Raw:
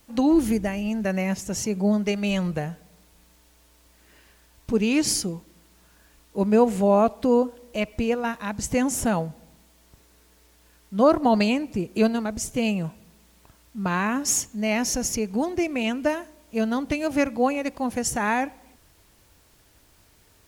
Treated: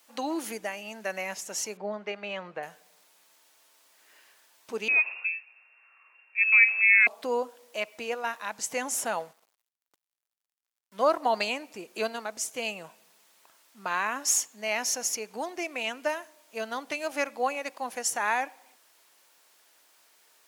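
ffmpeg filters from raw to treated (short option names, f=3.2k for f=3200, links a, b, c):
-filter_complex "[0:a]asettb=1/sr,asplit=3[a][b][c];[a]atrim=end=1.774[d];[b]atrim=start=1.77:end=2.63,asetpts=PTS-STARTPTS,afade=t=in:d=0.004:c=qsin,afade=t=out:st=0.856:d=0.004:c=qsin,lowpass=2.3k[e];[c]atrim=start=2.626[f];[d][e]acrossfade=d=0.004:c1=hsin:c2=qsin[g];[g][f]acrossfade=d=0.004:c1=qsin:c2=hsin,asettb=1/sr,asplit=3[h][i][j];[h]atrim=end=4.884[k];[i]atrim=start=4.88:end=7.07,asetpts=PTS-STARTPTS,afade=t=in:d=0.004:c=qsin,afade=t=out:st=2.186:d=0.004:c=qsin,lowpass=f=2.4k:t=q:w=0.5098,lowpass=f=2.4k:t=q:w=0.6013,lowpass=f=2.4k:t=q:w=0.9,lowpass=f=2.4k:t=q:w=2.563,afreqshift=-2800[l];[j]atrim=start=7.066[m];[k][l]acrossfade=d=0.004:c1=hsin:c2=qsin[n];[n][m]acrossfade=d=0.004:c1=qsin:c2=hsin,asettb=1/sr,asplit=3[o][p][q];[o]atrim=end=9.194[r];[p]atrim=start=9.19:end=11.17,asetpts=PTS-STARTPTS,afade=t=in:d=0.004:c=qsin,afade=t=out:st=1.976:d=0.004:c=qsin,aeval=exprs='sgn(val(0))*max(abs(val(0))-0.00376,0)':c=same[s];[q]atrim=start=11.166[t];[r][s]acrossfade=d=0.004:c1=hsin:c2=qsin[u];[u][t]acrossfade=d=0.004:c1=qsin:c2=hsin,highpass=660,volume=-1.5dB"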